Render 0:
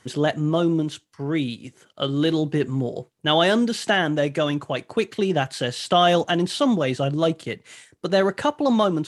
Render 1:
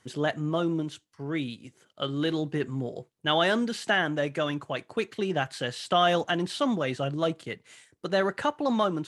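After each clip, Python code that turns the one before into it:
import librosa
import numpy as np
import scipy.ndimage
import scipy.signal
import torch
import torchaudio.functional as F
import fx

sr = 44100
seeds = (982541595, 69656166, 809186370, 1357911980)

y = fx.dynamic_eq(x, sr, hz=1500.0, q=0.78, threshold_db=-35.0, ratio=4.0, max_db=5)
y = y * 10.0 ** (-7.5 / 20.0)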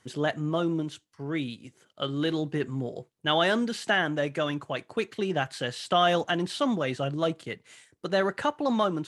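y = x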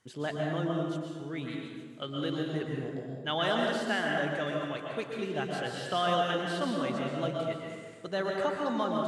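y = fx.rev_plate(x, sr, seeds[0], rt60_s=1.7, hf_ratio=0.6, predelay_ms=105, drr_db=-1.0)
y = y * 10.0 ** (-7.5 / 20.0)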